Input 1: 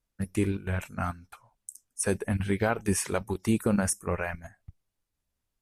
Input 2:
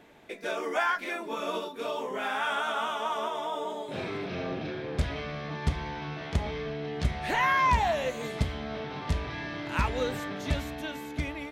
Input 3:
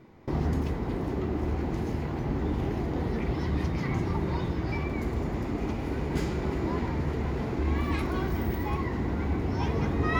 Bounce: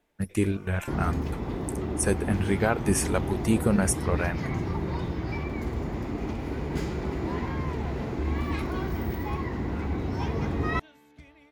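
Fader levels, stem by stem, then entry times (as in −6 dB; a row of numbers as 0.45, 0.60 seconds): +2.0, −18.5, −1.0 decibels; 0.00, 0.00, 0.60 seconds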